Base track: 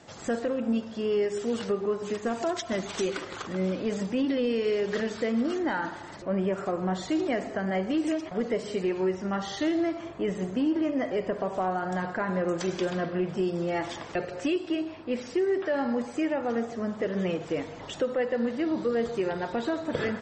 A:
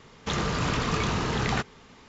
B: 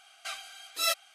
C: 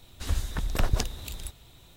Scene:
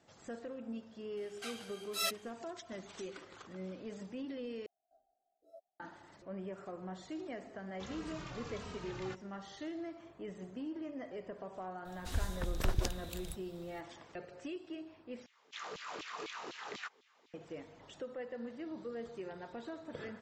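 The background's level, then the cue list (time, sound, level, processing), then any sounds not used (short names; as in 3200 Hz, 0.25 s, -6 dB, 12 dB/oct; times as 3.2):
base track -16 dB
1.17 add B -7 dB
4.66 replace with B -17.5 dB + elliptic low-pass 690 Hz
7.53 add A -17 dB + endless flanger 2.8 ms -1.5 Hz
11.85 add C -7.5 dB
15.26 replace with A -17.5 dB + LFO high-pass saw down 4 Hz 280–3600 Hz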